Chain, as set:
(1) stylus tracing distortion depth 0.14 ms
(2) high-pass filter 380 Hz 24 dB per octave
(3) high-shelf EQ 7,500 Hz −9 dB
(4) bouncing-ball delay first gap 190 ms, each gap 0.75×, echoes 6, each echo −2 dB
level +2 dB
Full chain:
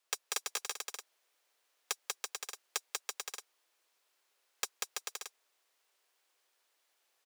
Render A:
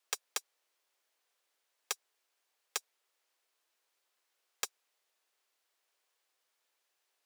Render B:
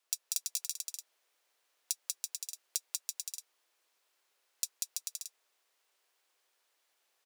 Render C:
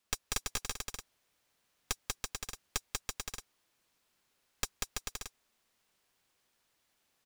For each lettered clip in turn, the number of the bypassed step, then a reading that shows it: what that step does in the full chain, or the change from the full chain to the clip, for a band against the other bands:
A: 4, change in crest factor +4.0 dB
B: 1, change in crest factor +2.5 dB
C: 2, 250 Hz band +13.5 dB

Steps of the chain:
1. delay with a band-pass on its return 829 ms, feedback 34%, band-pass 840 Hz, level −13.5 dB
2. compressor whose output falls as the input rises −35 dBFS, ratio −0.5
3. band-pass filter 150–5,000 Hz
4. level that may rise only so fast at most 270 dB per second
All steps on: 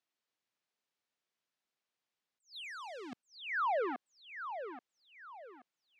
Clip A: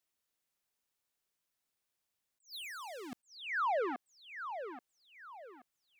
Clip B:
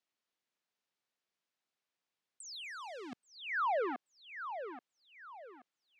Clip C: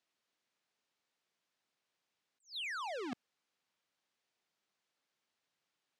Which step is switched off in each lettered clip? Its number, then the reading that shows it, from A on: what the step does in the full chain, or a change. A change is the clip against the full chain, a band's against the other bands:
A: 3, 8 kHz band +8.0 dB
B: 4, 8 kHz band +10.0 dB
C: 1, change in momentary loudness spread −12 LU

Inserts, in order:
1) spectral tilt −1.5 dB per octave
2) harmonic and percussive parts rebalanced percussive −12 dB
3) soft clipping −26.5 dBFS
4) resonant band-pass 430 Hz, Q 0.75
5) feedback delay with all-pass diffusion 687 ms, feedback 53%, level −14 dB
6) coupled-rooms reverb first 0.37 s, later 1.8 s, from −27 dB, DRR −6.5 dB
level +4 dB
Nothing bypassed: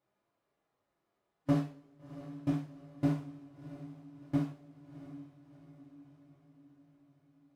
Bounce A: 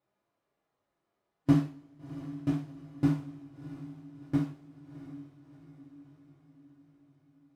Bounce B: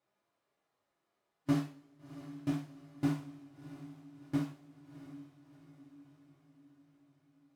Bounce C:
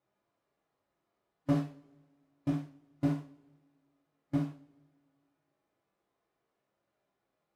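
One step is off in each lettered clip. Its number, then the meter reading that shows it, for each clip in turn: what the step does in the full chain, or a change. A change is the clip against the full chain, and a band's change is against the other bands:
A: 3, distortion level −10 dB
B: 1, 4 kHz band +4.5 dB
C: 5, change in momentary loudness spread −11 LU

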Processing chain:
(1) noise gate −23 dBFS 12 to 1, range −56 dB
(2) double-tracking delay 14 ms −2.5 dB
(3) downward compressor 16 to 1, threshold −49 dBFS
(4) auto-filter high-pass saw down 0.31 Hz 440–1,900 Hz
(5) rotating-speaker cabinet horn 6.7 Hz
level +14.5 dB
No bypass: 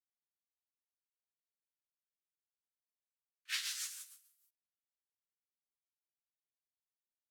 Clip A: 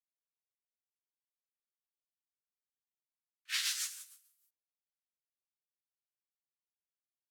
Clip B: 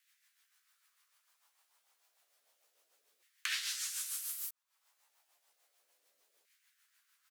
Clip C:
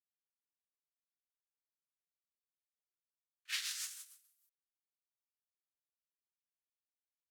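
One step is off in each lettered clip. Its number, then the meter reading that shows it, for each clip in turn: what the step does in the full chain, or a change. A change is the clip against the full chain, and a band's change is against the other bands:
3, average gain reduction 2.0 dB
1, change in momentary loudness spread −7 LU
2, change in momentary loudness spread +1 LU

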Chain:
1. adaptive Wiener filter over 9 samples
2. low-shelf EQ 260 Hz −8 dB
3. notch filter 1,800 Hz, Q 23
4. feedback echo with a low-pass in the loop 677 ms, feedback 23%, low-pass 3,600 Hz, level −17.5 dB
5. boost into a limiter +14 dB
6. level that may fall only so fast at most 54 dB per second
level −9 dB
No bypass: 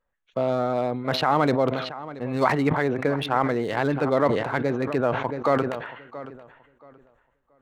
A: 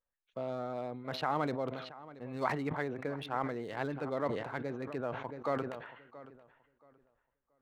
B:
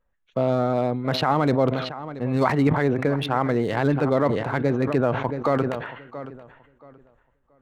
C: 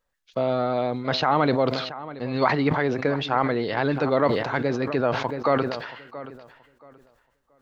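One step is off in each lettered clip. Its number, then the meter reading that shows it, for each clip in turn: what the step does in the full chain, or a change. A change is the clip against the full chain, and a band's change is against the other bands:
5, change in crest factor +2.5 dB
2, 125 Hz band +5.0 dB
1, 4 kHz band +2.5 dB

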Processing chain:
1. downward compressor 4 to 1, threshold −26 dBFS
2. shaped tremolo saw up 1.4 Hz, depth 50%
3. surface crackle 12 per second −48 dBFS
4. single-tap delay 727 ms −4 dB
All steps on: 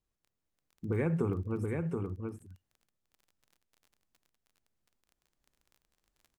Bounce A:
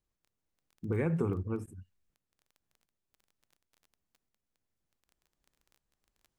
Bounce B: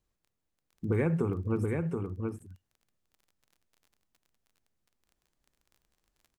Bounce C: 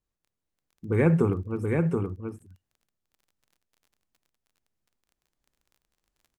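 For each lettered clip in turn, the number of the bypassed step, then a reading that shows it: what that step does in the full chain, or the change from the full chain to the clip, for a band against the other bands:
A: 4, change in momentary loudness spread +2 LU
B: 2, change in momentary loudness spread −2 LU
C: 1, change in integrated loudness +8.5 LU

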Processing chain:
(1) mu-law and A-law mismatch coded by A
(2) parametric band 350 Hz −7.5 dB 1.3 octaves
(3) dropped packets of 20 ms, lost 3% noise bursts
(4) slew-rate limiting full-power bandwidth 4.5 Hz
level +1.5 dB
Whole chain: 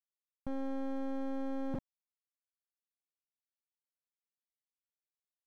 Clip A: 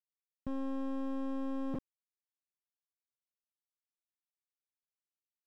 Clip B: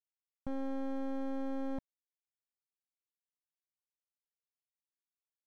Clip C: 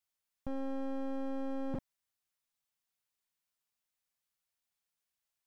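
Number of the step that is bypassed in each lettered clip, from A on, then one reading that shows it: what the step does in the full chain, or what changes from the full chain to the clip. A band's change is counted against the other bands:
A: 2, 250 Hz band +2.5 dB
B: 3, 125 Hz band −5.0 dB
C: 1, distortion level −29 dB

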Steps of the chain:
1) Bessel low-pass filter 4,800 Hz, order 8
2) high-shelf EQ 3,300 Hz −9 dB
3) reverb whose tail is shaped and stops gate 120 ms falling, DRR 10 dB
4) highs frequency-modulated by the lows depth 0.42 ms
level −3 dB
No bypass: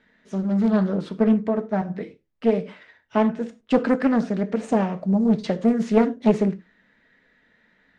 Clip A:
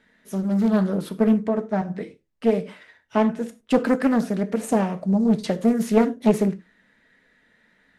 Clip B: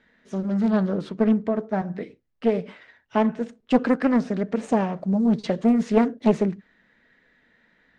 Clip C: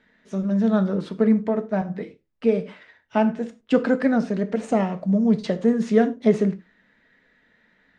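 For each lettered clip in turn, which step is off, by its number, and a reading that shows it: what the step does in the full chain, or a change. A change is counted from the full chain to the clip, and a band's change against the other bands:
1, 4 kHz band +1.5 dB
3, change in integrated loudness −1.0 LU
4, 2 kHz band +1.5 dB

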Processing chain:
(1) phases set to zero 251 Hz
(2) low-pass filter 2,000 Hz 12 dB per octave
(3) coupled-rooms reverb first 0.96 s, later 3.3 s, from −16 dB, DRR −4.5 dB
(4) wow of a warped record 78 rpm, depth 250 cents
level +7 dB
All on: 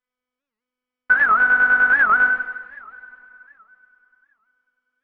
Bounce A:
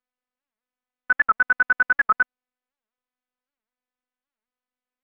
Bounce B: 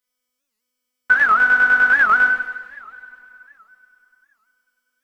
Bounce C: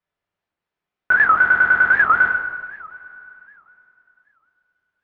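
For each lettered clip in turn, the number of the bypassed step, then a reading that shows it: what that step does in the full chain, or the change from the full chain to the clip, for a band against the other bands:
3, change in momentary loudness spread −6 LU
2, change in integrated loudness +1.0 LU
1, change in momentary loudness spread +4 LU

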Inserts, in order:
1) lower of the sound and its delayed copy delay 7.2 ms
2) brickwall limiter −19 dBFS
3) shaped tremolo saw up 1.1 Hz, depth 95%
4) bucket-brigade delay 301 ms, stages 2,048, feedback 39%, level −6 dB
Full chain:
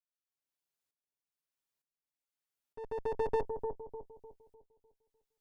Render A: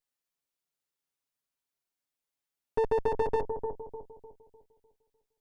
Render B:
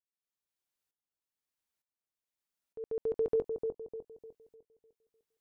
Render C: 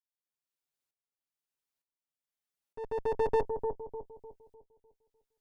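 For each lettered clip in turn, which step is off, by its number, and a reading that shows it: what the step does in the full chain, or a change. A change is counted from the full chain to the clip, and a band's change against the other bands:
3, change in momentary loudness spread −6 LU
1, 1 kHz band −21.0 dB
2, average gain reduction 2.5 dB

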